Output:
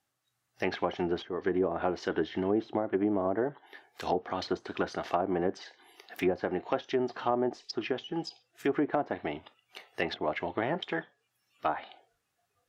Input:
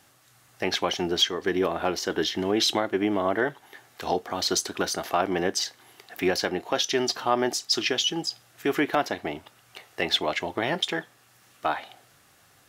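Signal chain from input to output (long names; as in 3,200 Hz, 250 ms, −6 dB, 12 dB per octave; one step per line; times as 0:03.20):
noise reduction from a noise print of the clip's start 19 dB
treble cut that deepens with the level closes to 750 Hz, closed at −20 dBFS
level −3 dB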